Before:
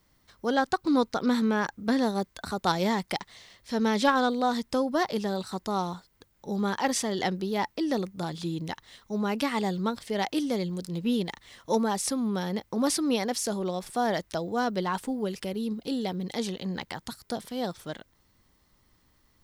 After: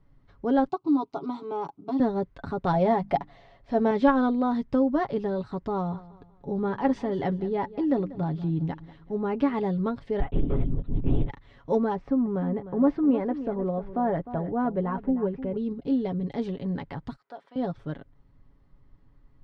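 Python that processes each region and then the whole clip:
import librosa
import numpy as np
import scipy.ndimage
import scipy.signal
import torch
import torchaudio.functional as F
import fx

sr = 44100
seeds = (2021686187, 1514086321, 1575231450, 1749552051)

y = fx.chain(x, sr, fx.highpass(hz=240.0, slope=12),
    fx.fixed_phaser(hz=340.0, stages=8), at=(0.68, 2.0))
y = fx.chain(y, sr, fx.peak_eq(hz=710.0, db=12.0, octaves=0.5),
    fx.hum_notches(base_hz=50, count=6), at=(2.73, 3.91))
y = fx.chain(y, sr, fx.high_shelf(hz=4300.0, db=-5.5),
    fx.echo_feedback(ms=190, feedback_pct=36, wet_db=-18.0), at=(5.72, 9.54))
y = fx.chain(y, sr, fx.tube_stage(drive_db=25.0, bias=0.7),
    fx.lpc_vocoder(seeds[0], excitation='whisper', order=10), at=(10.2, 11.3))
y = fx.chain(y, sr, fx.lowpass(hz=1800.0, slope=12),
    fx.echo_single(ms=305, db=-13.0), at=(11.95, 15.57))
y = fx.chain(y, sr, fx.highpass(hz=880.0, slope=12),
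    fx.high_shelf(hz=2300.0, db=-9.5), at=(17.16, 17.56))
y = scipy.signal.sosfilt(scipy.signal.bessel(2, 2400.0, 'lowpass', norm='mag', fs=sr, output='sos'), y)
y = fx.tilt_eq(y, sr, slope=-3.0)
y = y + 0.55 * np.pad(y, (int(7.2 * sr / 1000.0), 0))[:len(y)]
y = y * 10.0 ** (-2.5 / 20.0)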